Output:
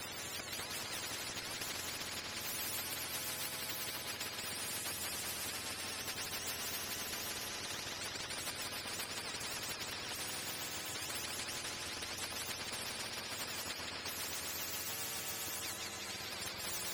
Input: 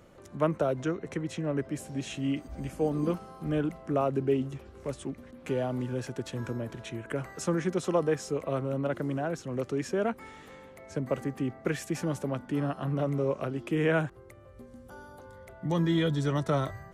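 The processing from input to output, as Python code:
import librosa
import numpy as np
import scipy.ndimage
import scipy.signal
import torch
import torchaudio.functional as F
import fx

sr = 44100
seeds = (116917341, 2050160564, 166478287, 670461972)

p1 = fx.octave_mirror(x, sr, pivot_hz=820.0)
p2 = fx.peak_eq(p1, sr, hz=1200.0, db=-14.5, octaves=0.35)
p3 = fx.over_compress(p2, sr, threshold_db=-40.0, ratio=-0.5)
p4 = fx.echo_opening(p3, sr, ms=125, hz=200, octaves=2, feedback_pct=70, wet_db=-6)
p5 = fx.rotary_switch(p4, sr, hz=1.0, then_hz=7.5, switch_at_s=1.64)
p6 = p5 + fx.echo_single(p5, sr, ms=177, db=-9.0, dry=0)
p7 = fx.spectral_comp(p6, sr, ratio=10.0)
y = p7 * 10.0 ** (-1.5 / 20.0)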